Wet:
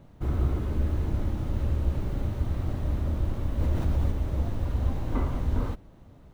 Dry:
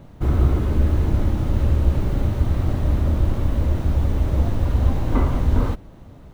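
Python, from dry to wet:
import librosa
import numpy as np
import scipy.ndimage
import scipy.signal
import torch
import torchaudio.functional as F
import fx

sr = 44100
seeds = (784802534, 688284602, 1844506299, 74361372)

y = fx.env_flatten(x, sr, amount_pct=50, at=(3.58, 4.1), fade=0.02)
y = y * librosa.db_to_amplitude(-8.5)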